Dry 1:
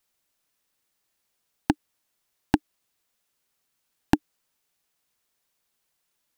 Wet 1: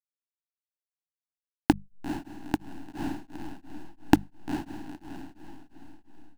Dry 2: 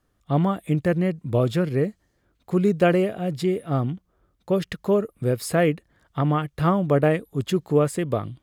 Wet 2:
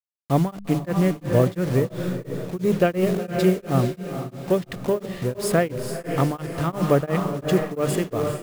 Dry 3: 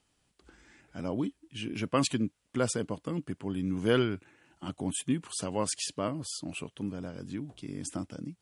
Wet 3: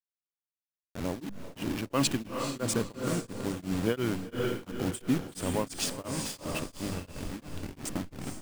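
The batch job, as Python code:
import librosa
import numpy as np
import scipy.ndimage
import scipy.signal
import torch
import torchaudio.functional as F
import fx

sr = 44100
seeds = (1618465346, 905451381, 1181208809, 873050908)

p1 = fx.delta_hold(x, sr, step_db=-34.0)
p2 = fx.hum_notches(p1, sr, base_hz=50, count=4)
p3 = np.clip(p2, -10.0 ** (-15.0 / 20.0), 10.0 ** (-15.0 / 20.0))
p4 = p2 + (p3 * librosa.db_to_amplitude(-11.0))
p5 = fx.echo_diffused(p4, sr, ms=469, feedback_pct=43, wet_db=-6)
p6 = p5 * np.abs(np.cos(np.pi * 2.9 * np.arange(len(p5)) / sr))
y = p6 * librosa.db_to_amplitude(1.0)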